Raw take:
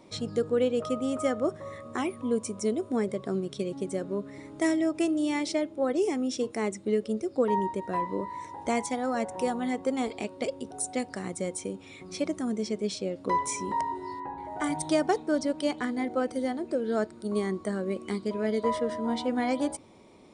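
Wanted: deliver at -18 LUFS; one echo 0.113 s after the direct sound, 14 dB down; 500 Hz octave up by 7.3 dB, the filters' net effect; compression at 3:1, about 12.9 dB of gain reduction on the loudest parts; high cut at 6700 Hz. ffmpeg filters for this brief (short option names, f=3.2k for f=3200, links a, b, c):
-af "lowpass=6.7k,equalizer=f=500:t=o:g=8.5,acompressor=threshold=-32dB:ratio=3,aecho=1:1:113:0.2,volume=16dB"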